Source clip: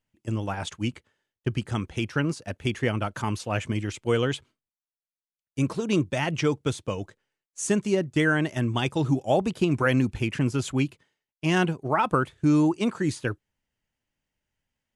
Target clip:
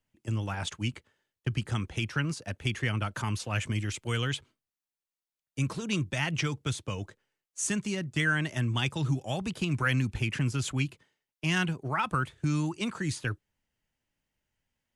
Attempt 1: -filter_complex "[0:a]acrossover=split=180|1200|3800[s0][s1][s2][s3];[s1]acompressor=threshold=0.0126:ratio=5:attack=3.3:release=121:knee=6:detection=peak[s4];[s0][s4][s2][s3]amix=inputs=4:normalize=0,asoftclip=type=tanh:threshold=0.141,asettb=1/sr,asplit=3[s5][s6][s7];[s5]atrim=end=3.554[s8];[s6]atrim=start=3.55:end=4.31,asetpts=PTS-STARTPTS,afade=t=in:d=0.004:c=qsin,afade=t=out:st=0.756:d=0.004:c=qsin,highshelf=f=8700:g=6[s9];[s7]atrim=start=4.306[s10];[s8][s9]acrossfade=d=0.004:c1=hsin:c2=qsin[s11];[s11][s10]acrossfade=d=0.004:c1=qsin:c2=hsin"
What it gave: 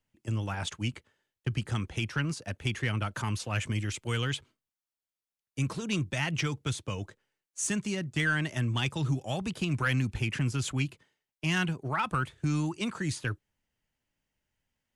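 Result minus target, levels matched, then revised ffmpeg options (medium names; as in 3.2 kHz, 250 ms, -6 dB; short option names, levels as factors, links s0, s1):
saturation: distortion +18 dB
-filter_complex "[0:a]acrossover=split=180|1200|3800[s0][s1][s2][s3];[s1]acompressor=threshold=0.0126:ratio=5:attack=3.3:release=121:knee=6:detection=peak[s4];[s0][s4][s2][s3]amix=inputs=4:normalize=0,asoftclip=type=tanh:threshold=0.447,asettb=1/sr,asplit=3[s5][s6][s7];[s5]atrim=end=3.554[s8];[s6]atrim=start=3.55:end=4.31,asetpts=PTS-STARTPTS,afade=t=in:d=0.004:c=qsin,afade=t=out:st=0.756:d=0.004:c=qsin,highshelf=f=8700:g=6[s9];[s7]atrim=start=4.306[s10];[s8][s9]acrossfade=d=0.004:c1=hsin:c2=qsin[s11];[s11][s10]acrossfade=d=0.004:c1=qsin:c2=hsin"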